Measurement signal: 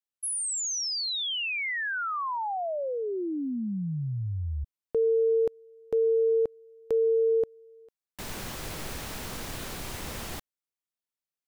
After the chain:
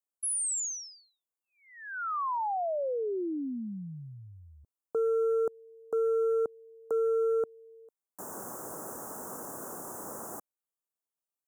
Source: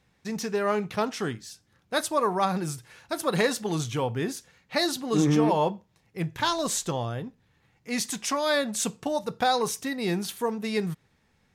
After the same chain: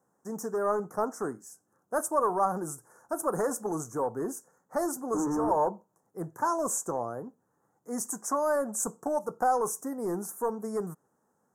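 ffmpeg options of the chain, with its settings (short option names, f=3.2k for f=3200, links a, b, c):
-filter_complex "[0:a]highpass=280,acrossover=split=720[a][b];[a]asoftclip=type=hard:threshold=-27.5dB[c];[c][b]amix=inputs=2:normalize=0,asuperstop=centerf=3100:order=8:qfactor=0.58"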